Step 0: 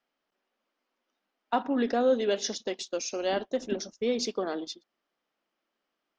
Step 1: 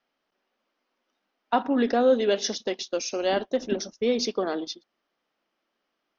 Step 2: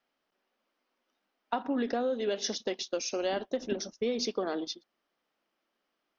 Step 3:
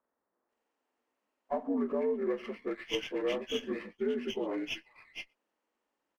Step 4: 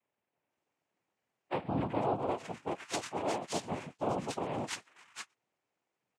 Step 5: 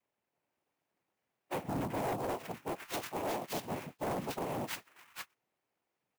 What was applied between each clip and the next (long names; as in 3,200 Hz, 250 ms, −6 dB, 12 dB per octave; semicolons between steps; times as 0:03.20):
Butterworth low-pass 6,400 Hz 72 dB per octave; level +4 dB
downward compressor 10 to 1, threshold −24 dBFS, peak gain reduction 10 dB; level −2.5 dB
partials spread apart or drawn together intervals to 80%; multiband delay without the direct sound lows, highs 490 ms, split 1,700 Hz; windowed peak hold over 3 samples
cochlear-implant simulation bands 4; level −1.5 dB
hard clipping −31.5 dBFS, distortion −10 dB; converter with an unsteady clock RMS 0.031 ms